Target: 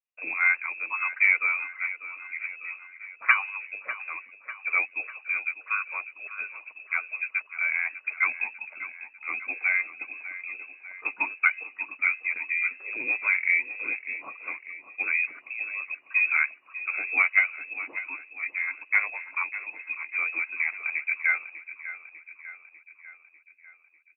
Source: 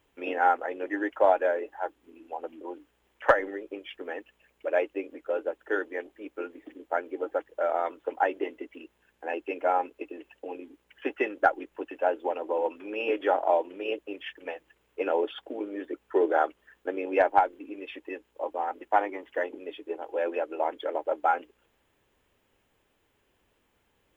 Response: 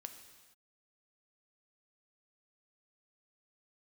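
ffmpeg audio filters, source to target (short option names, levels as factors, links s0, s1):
-filter_complex "[0:a]agate=range=0.0224:threshold=0.00251:ratio=3:detection=peak,lowpass=f=2500:t=q:w=0.5098,lowpass=f=2500:t=q:w=0.6013,lowpass=f=2500:t=q:w=0.9,lowpass=f=2500:t=q:w=2.563,afreqshift=-2900,highpass=320,asplit=2[s0][s1];[s1]aecho=0:1:597|1194|1791|2388|2985|3582:0.211|0.12|0.0687|0.0391|0.0223|0.0127[s2];[s0][s2]amix=inputs=2:normalize=0"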